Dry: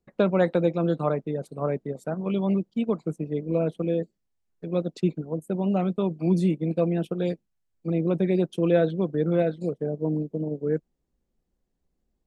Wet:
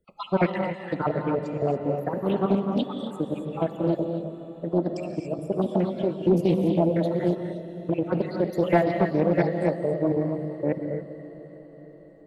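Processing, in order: random spectral dropouts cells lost 53%; in parallel at -2 dB: compressor, threshold -31 dBFS, peak gain reduction 14.5 dB; on the sum: formant shift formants +3 st; on a send: diffused feedback echo 0.477 s, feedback 58%, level -15 dB; on the sum: non-linear reverb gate 0.3 s rising, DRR 3.5 dB; Doppler distortion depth 0.31 ms

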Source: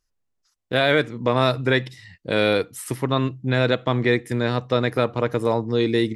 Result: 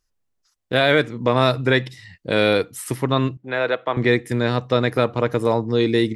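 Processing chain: 3.37–3.97 three-band isolator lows -19 dB, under 390 Hz, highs -14 dB, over 2900 Hz; gain +2 dB

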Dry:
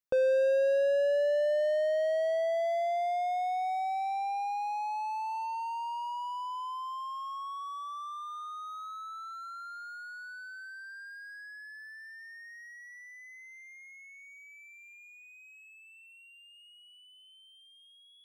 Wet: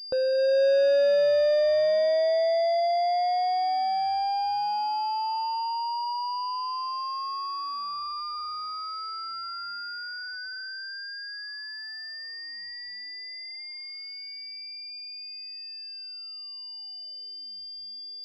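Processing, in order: AGC gain up to 6 dB; pulse-width modulation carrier 4800 Hz

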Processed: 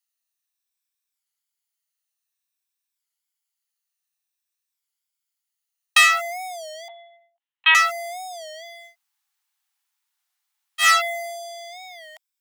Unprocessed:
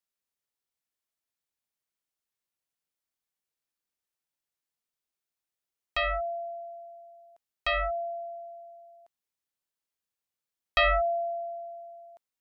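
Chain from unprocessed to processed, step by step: moving spectral ripple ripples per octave 1.7, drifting -0.53 Hz, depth 7 dB; sample leveller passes 3; high shelf 2200 Hz +11.5 dB; 6.88–7.75 LPC vocoder at 8 kHz pitch kept; 8.91–10.83 room tone, crossfade 0.10 s; elliptic high-pass 800 Hz, stop band 40 dB; record warp 33 1/3 rpm, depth 160 cents; gain +2.5 dB

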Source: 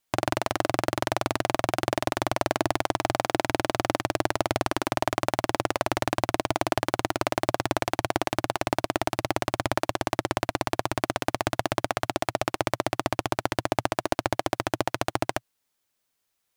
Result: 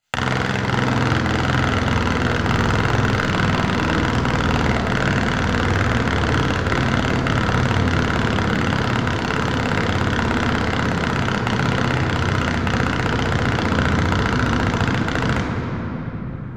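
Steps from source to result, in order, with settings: 2.39–3.31 level-crossing sampler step -23.5 dBFS; pump 100 bpm, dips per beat 1, -11 dB, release 74 ms; reverb removal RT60 1.5 s; full-wave rectifier; reverb RT60 3.5 s, pre-delay 10 ms, DRR -2 dB; 9.37–10.05 crackle 200/s -> 59/s -40 dBFS; mismatched tape noise reduction encoder only; gain -3 dB

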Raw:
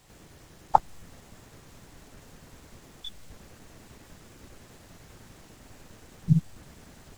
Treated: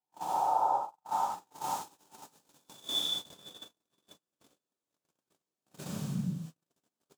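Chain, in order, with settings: spectral swells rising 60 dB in 1.08 s; thin delay 0.493 s, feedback 38%, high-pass 1400 Hz, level -7 dB; compressor 16:1, threshold -32 dBFS, peak gain reduction 24 dB; high shelf 3500 Hz +2.5 dB, from 1.53 s +7.5 dB, from 2.99 s +2 dB; plate-style reverb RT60 0.88 s, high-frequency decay 1×, DRR -2.5 dB; gate -36 dBFS, range -49 dB; HPF 260 Hz 12 dB/oct; bell 2000 Hz -9.5 dB 0.42 oct; gain +2.5 dB

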